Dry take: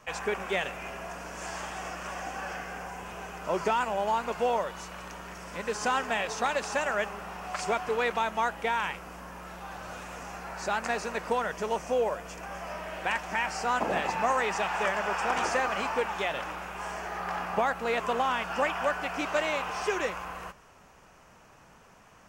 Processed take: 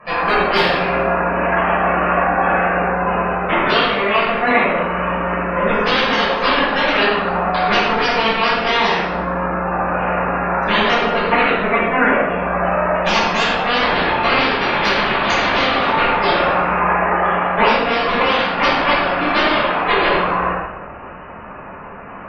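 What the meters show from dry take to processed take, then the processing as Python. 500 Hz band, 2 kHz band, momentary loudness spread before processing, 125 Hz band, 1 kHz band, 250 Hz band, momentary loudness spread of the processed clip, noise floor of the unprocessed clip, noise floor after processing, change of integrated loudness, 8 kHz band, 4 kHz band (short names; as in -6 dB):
+13.0 dB, +15.5 dB, 12 LU, +18.5 dB, +14.0 dB, +18.0 dB, 5 LU, -56 dBFS, -33 dBFS, +14.5 dB, 0.0 dB, +18.5 dB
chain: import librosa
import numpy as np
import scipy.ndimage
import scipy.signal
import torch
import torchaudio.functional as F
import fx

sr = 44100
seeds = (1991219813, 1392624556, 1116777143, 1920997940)

y = scipy.signal.sosfilt(scipy.signal.butter(2, 2300.0, 'lowpass', fs=sr, output='sos'), x)
y = fx.cheby_harmonics(y, sr, harmonics=(3, 4, 6, 7), levels_db=(-17, -7, -9, -12), full_scale_db=-13.5)
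y = fx.low_shelf(y, sr, hz=150.0, db=-8.0)
y = fx.rider(y, sr, range_db=4, speed_s=0.5)
y = fx.spec_gate(y, sr, threshold_db=-20, keep='strong')
y = fx.clip_asym(y, sr, top_db=-18.5, bottom_db=-12.5)
y = fx.room_shoebox(y, sr, seeds[0], volume_m3=540.0, walls='mixed', distance_m=5.8)
y = y * 10.0 ** (5.0 / 20.0)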